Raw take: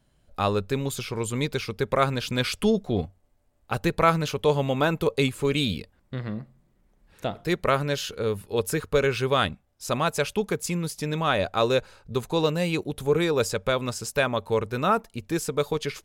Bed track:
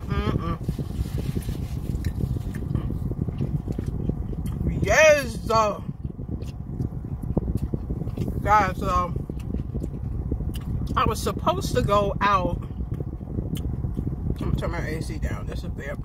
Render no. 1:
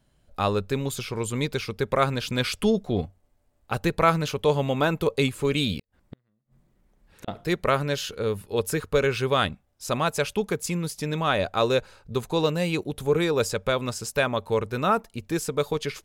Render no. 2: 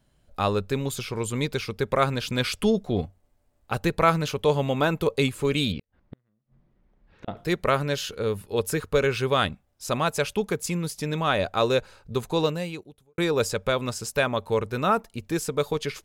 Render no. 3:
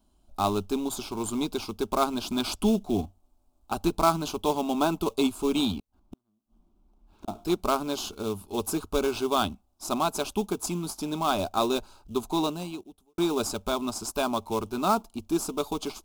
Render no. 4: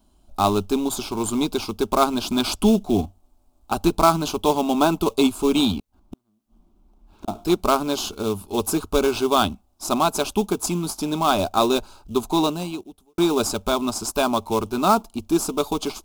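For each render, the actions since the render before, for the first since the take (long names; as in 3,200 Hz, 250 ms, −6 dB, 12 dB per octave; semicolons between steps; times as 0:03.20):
0:05.79–0:07.28: gate with flip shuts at −25 dBFS, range −41 dB
0:05.72–0:07.37: high-frequency loss of the air 220 metres; 0:12.43–0:13.18: fade out quadratic
in parallel at −8.5 dB: sample-rate reduction 3,100 Hz, jitter 20%; on the sum: phaser with its sweep stopped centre 500 Hz, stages 6
level +6.5 dB; brickwall limiter −2 dBFS, peak gain reduction 1 dB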